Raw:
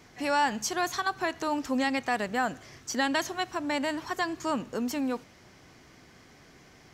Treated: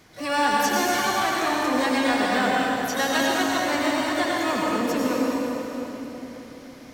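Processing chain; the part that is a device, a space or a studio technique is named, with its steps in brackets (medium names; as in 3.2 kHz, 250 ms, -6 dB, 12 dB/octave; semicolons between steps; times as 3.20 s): shimmer-style reverb (harmony voices +12 st -6 dB; reverberation RT60 3.8 s, pre-delay 82 ms, DRR -4.5 dB)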